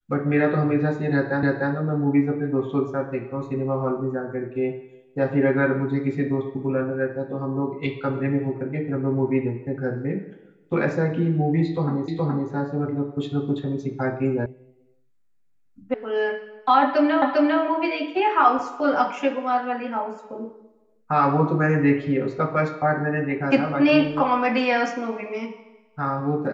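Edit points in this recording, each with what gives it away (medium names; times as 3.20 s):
1.43 s: repeat of the last 0.3 s
12.08 s: repeat of the last 0.42 s
14.46 s: sound stops dead
15.94 s: sound stops dead
17.22 s: repeat of the last 0.4 s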